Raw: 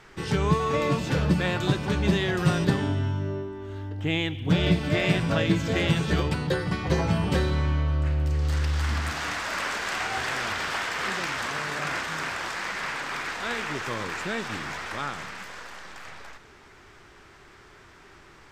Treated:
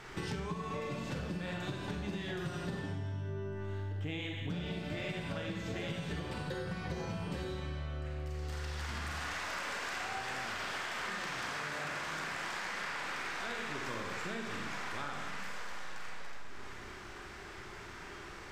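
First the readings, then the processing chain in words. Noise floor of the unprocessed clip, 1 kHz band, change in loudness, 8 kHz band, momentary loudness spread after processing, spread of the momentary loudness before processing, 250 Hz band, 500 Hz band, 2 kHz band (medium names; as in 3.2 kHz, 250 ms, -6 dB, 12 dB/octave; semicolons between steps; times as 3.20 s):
-51 dBFS, -10.0 dB, -12.5 dB, -9.5 dB, 10 LU, 9 LU, -14.0 dB, -12.5 dB, -9.5 dB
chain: Schroeder reverb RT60 1 s, combs from 31 ms, DRR 0.5 dB; compression 10:1, threshold -37 dBFS, peak gain reduction 22 dB; trim +1 dB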